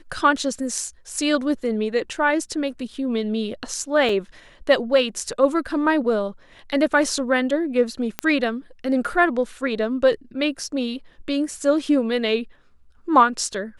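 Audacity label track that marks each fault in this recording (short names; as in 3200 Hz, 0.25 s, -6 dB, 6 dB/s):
4.090000	4.090000	gap 3.1 ms
8.190000	8.190000	pop -7 dBFS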